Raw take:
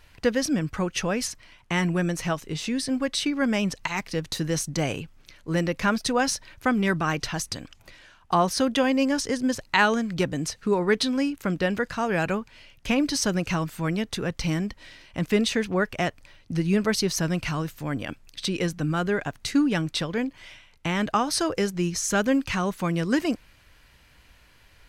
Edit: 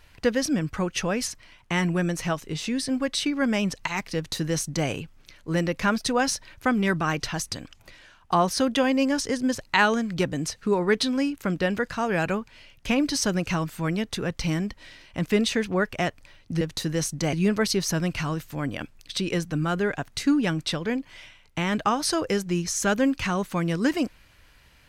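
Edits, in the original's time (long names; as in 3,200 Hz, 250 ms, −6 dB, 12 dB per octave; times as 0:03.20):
0:04.16–0:04.88: duplicate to 0:16.61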